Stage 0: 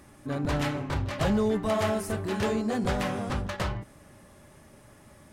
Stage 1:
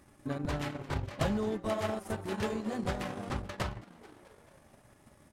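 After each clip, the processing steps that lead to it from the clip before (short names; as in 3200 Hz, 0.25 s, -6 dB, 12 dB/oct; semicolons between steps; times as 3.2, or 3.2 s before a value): frequency-shifting echo 0.217 s, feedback 58%, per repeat +120 Hz, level -13.5 dB; transient shaper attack +7 dB, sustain -11 dB; gain -7.5 dB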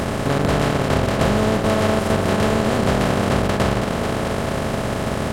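per-bin compression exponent 0.2; gain +7.5 dB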